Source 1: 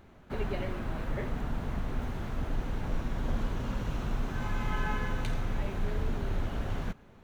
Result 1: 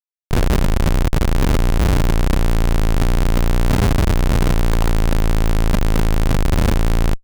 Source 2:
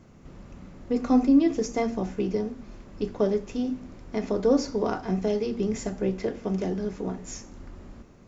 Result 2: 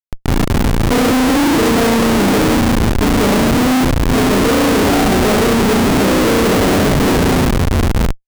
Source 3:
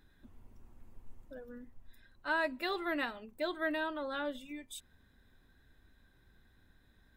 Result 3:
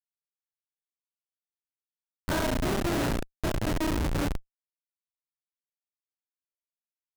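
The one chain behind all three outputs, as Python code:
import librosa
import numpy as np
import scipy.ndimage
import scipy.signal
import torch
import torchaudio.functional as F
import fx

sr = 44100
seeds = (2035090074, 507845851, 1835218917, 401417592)

y = fx.bin_compress(x, sr, power=0.6)
y = fx.room_flutter(y, sr, wall_m=6.0, rt60_s=1.1)
y = fx.schmitt(y, sr, flips_db=-24.5)
y = y * 10.0 ** (7.5 / 20.0)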